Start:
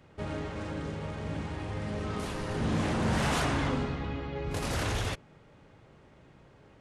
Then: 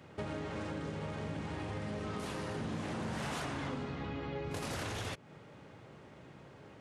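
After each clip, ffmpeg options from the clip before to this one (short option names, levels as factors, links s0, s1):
-af "highpass=97,acompressor=threshold=0.01:ratio=6,volume=1.5"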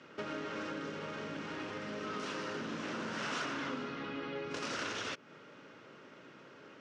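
-af "highpass=260,equalizer=f=260:t=q:w=4:g=3,equalizer=f=770:t=q:w=4:g=-8,equalizer=f=1400:t=q:w=4:g=7,equalizer=f=2800:t=q:w=4:g=4,equalizer=f=5600:t=q:w=4:g=5,lowpass=f=6700:w=0.5412,lowpass=f=6700:w=1.3066,volume=1.12"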